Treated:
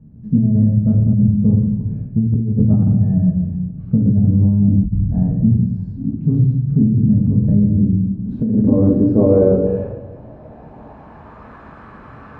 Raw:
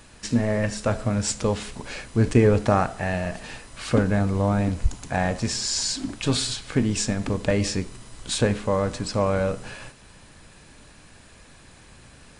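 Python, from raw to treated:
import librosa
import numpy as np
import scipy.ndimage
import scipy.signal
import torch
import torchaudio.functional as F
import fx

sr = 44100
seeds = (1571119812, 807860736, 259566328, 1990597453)

y = fx.room_shoebox(x, sr, seeds[0], volume_m3=290.0, walls='mixed', distance_m=1.5)
y = fx.filter_sweep_lowpass(y, sr, from_hz=160.0, to_hz=1200.0, start_s=7.74, end_s=11.56, q=2.9)
y = fx.over_compress(y, sr, threshold_db=-16.0, ratio=-1.0)
y = scipy.signal.sosfilt(scipy.signal.butter(2, 60.0, 'highpass', fs=sr, output='sos'), y)
y = y * librosa.db_to_amplitude(4.5)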